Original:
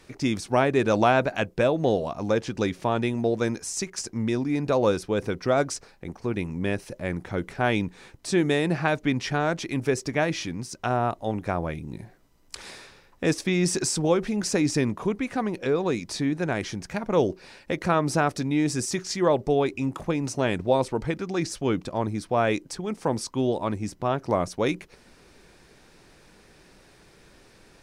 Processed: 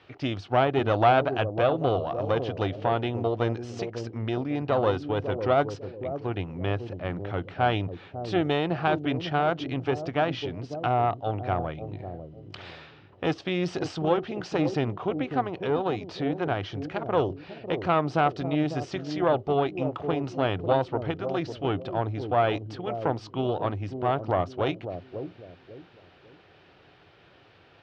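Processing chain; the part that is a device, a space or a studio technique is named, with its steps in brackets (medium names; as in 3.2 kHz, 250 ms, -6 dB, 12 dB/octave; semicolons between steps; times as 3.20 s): dynamic bell 2.2 kHz, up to -6 dB, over -44 dBFS, Q 1.8; analogue delay pedal into a guitar amplifier (bucket-brigade echo 549 ms, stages 2048, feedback 33%, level -7 dB; valve stage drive 13 dB, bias 0.6; cabinet simulation 84–4000 Hz, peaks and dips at 99 Hz +8 dB, 210 Hz -9 dB, 730 Hz +7 dB, 1.3 kHz +5 dB, 3 kHz +8 dB)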